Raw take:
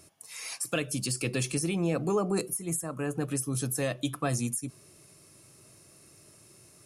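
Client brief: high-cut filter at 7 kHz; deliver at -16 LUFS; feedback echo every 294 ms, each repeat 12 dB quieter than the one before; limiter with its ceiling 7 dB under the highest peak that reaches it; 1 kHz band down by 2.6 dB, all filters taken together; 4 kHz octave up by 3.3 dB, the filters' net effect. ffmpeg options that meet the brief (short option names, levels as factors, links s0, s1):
-af "lowpass=7000,equalizer=f=1000:t=o:g=-4,equalizer=f=4000:t=o:g=5,alimiter=limit=0.0631:level=0:latency=1,aecho=1:1:294|588|882:0.251|0.0628|0.0157,volume=8.41"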